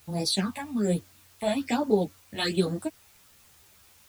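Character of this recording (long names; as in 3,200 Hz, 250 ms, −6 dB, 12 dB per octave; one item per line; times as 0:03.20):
phaser sweep stages 6, 1.2 Hz, lowest notch 350–2,700 Hz
a quantiser's noise floor 10 bits, dither triangular
a shimmering, thickened sound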